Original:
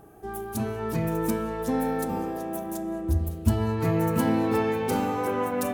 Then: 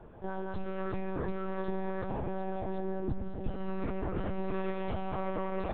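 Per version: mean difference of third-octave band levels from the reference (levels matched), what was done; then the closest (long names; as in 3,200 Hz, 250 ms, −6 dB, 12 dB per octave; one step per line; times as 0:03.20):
10.5 dB: downward compressor 5 to 1, threshold −31 dBFS, peak gain reduction 14.5 dB
on a send: feedback echo with a low-pass in the loop 925 ms, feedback 50%, low-pass 2,000 Hz, level −11.5 dB
on the sum: one-pitch LPC vocoder at 8 kHz 190 Hz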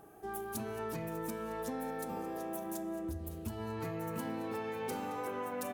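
4.0 dB: low-shelf EQ 110 Hz −7.5 dB
downward compressor, threshold −31 dBFS, peak gain reduction 12 dB
low-shelf EQ 400 Hz −4 dB
on a send: single-tap delay 220 ms −16.5 dB
on the sum: level −3 dB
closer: second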